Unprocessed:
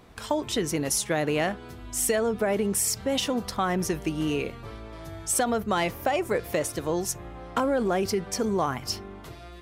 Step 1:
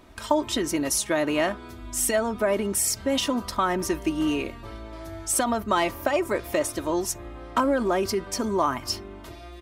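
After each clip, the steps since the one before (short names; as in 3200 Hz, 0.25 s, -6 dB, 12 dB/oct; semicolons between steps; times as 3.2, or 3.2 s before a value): comb 3.2 ms, depth 58%; dynamic EQ 1100 Hz, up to +6 dB, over -45 dBFS, Q 3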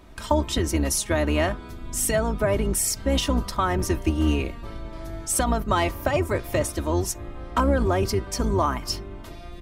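octaver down 2 oct, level +4 dB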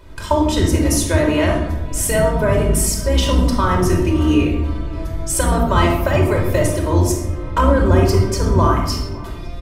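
outdoor echo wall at 96 m, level -20 dB; shoebox room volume 3000 m³, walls furnished, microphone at 4.9 m; gain +1.5 dB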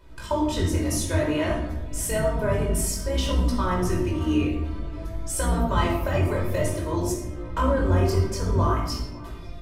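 chorus 0.55 Hz, delay 16.5 ms, depth 6.6 ms; gain -5.5 dB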